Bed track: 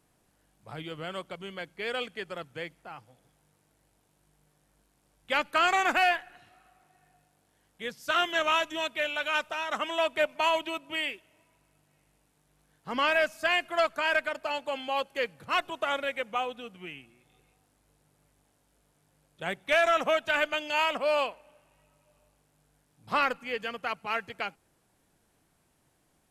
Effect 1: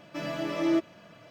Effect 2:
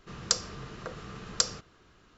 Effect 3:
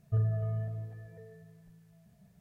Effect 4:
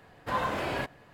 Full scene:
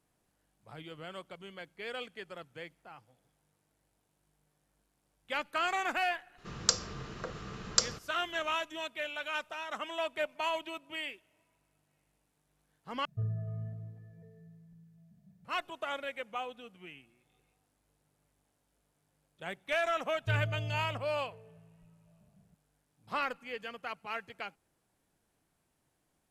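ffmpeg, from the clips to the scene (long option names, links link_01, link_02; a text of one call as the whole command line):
ffmpeg -i bed.wav -i cue0.wav -i cue1.wav -i cue2.wav -filter_complex "[3:a]asplit=2[link_01][link_02];[0:a]volume=-7.5dB[link_03];[link_01]equalizer=frequency=180:width=1.3:gain=12[link_04];[link_02]lowpass=1000[link_05];[link_03]asplit=2[link_06][link_07];[link_06]atrim=end=13.054[link_08];[link_04]atrim=end=2.4,asetpts=PTS-STARTPTS,volume=-10.5dB[link_09];[link_07]atrim=start=15.446[link_10];[2:a]atrim=end=2.17,asetpts=PTS-STARTPTS,volume=-0.5dB,afade=type=in:duration=0.004:curve=hsin,afade=type=out:start_time=2.166:duration=0.004:curve=hsin,adelay=6380[link_11];[link_05]atrim=end=2.4,asetpts=PTS-STARTPTS,volume=-4dB,afade=type=in:duration=0.004:curve=hsin,afade=type=out:start_time=2.396:duration=0.004:curve=hsin,adelay=20150[link_12];[link_08][link_09]acrossfade=duration=0.004:curve1=hsin:curve2=hsin[link_13];[link_13][link_10]acrossfade=duration=0.004:curve1=hsin:curve2=hsin[link_14];[link_14][link_11][link_12]amix=inputs=3:normalize=0" out.wav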